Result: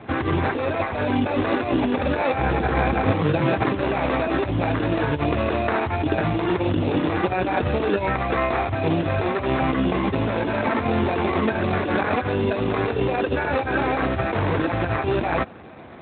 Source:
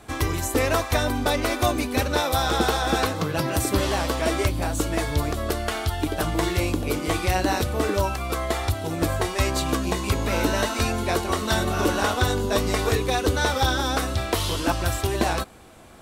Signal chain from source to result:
compressor whose output falls as the input rises −26 dBFS, ratio −1
decimation without filtering 14×
0:02.38–0:03.11: low-shelf EQ 150 Hz +12 dB
level +6 dB
AMR narrowband 12.2 kbit/s 8,000 Hz

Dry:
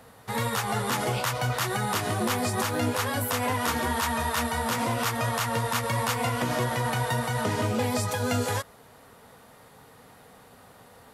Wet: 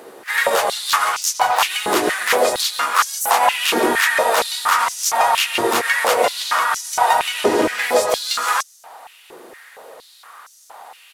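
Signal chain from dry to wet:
pitch-shifted copies added −5 semitones −8 dB, −3 semitones −9 dB, +5 semitones −11 dB
high-pass on a step sequencer 4.3 Hz 360–6,000 Hz
level +7 dB

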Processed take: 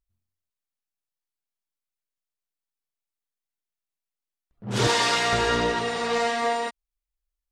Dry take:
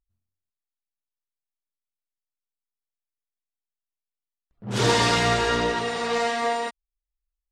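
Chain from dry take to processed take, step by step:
0:04.87–0:05.33: high-pass filter 600 Hz 6 dB per octave

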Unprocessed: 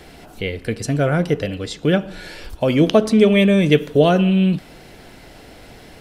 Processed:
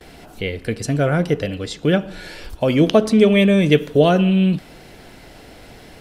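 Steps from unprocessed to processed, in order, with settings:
noise gate with hold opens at −36 dBFS

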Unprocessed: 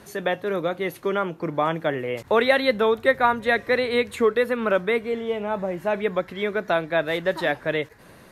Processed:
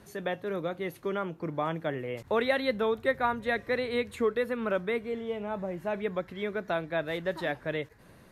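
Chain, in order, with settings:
low-shelf EQ 210 Hz +7 dB
level −9 dB

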